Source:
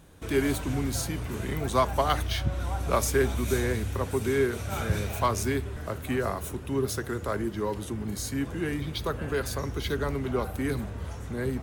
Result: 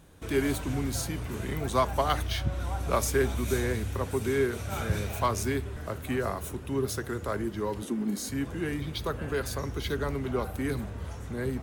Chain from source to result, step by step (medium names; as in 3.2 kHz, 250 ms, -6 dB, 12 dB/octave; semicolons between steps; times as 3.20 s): 7.82–8.29 s: resonant low shelf 150 Hz -13 dB, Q 3; trim -1.5 dB